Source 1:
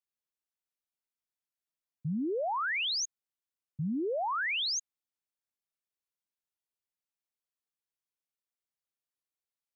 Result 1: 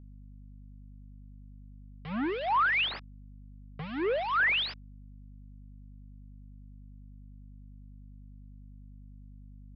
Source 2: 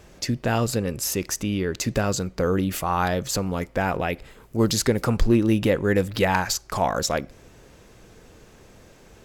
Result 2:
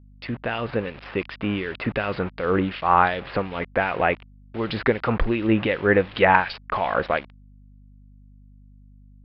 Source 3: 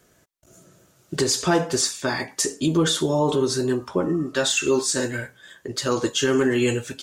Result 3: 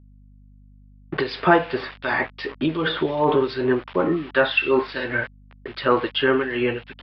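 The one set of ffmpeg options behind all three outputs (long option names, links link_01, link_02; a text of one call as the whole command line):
ffmpeg -i in.wav -filter_complex "[0:a]aresample=11025,aeval=exprs='val(0)*gte(abs(val(0)),0.0168)':channel_layout=same,aresample=44100,lowshelf=frequency=380:gain=-12,dynaudnorm=framelen=100:gausssize=17:maxgain=4dB,acrossover=split=2300[link_01][link_02];[link_01]aeval=exprs='val(0)*(1-0.7/2+0.7/2*cos(2*PI*2.7*n/s))':channel_layout=same[link_03];[link_02]aeval=exprs='val(0)*(1-0.7/2-0.7/2*cos(2*PI*2.7*n/s))':channel_layout=same[link_04];[link_03][link_04]amix=inputs=2:normalize=0,lowpass=frequency=2900:width=0.5412,lowpass=frequency=2900:width=1.3066,aeval=exprs='val(0)+0.002*(sin(2*PI*50*n/s)+sin(2*PI*2*50*n/s)/2+sin(2*PI*3*50*n/s)/3+sin(2*PI*4*50*n/s)/4+sin(2*PI*5*50*n/s)/5)':channel_layout=same,volume=6dB" out.wav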